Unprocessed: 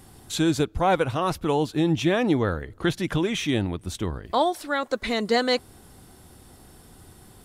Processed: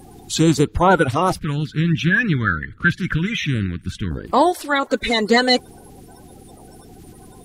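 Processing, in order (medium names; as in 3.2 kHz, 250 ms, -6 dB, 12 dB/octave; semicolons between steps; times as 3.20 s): coarse spectral quantiser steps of 30 dB; 1.39–4.11 s: FFT filter 190 Hz 0 dB, 820 Hz -28 dB, 1.5 kHz +6 dB, 7.4 kHz -12 dB; trim +7.5 dB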